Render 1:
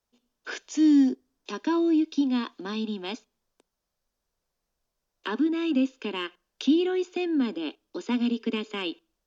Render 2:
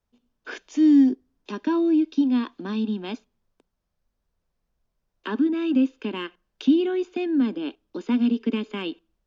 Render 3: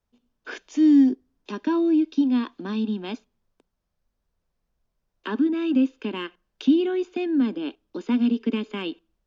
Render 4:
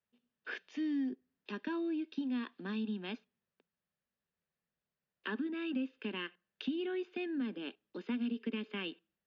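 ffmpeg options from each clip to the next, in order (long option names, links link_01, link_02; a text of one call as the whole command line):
ffmpeg -i in.wav -af "bass=frequency=250:gain=9,treble=frequency=4000:gain=-8" out.wav
ffmpeg -i in.wav -af anull out.wav
ffmpeg -i in.wav -af "highpass=150,equalizer=frequency=180:width_type=q:width=4:gain=3,equalizer=frequency=300:width_type=q:width=4:gain=-7,equalizer=frequency=680:width_type=q:width=4:gain=-3,equalizer=frequency=970:width_type=q:width=4:gain=-4,equalizer=frequency=1800:width_type=q:width=4:gain=7,equalizer=frequency=2700:width_type=q:width=4:gain=4,lowpass=frequency=4600:width=0.5412,lowpass=frequency=4600:width=1.3066,acompressor=threshold=-25dB:ratio=3,volume=-8.5dB" out.wav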